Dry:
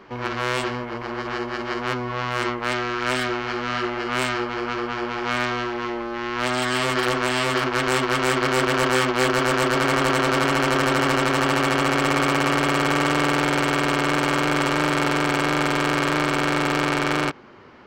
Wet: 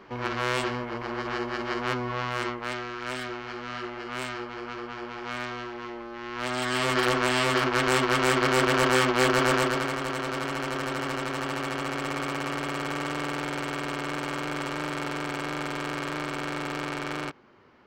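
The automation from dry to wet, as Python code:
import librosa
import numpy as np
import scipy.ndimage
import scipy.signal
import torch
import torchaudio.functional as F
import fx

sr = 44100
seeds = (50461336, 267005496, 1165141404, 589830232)

y = fx.gain(x, sr, db=fx.line((2.11, -3.0), (2.92, -10.0), (6.18, -10.0), (6.98, -2.0), (9.54, -2.0), (9.97, -10.5)))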